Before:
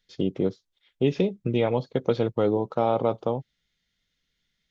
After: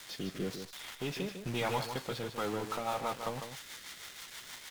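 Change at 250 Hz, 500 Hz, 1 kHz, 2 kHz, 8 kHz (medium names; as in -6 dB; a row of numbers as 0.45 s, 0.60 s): -13.0 dB, -14.0 dB, -6.0 dB, +0.5 dB, no reading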